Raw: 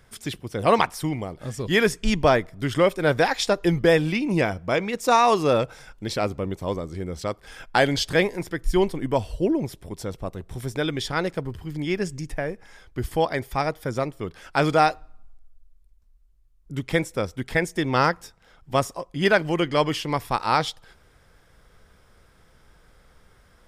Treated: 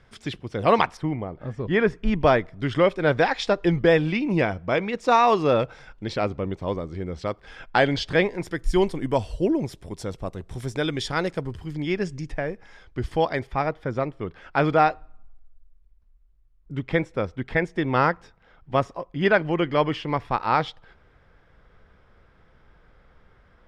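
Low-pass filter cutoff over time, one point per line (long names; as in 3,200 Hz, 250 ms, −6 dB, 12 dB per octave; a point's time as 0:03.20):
4,400 Hz
from 0:00.97 1,800 Hz
from 0:02.21 3,800 Hz
from 0:08.43 8,900 Hz
from 0:11.75 4,800 Hz
from 0:13.47 2,700 Hz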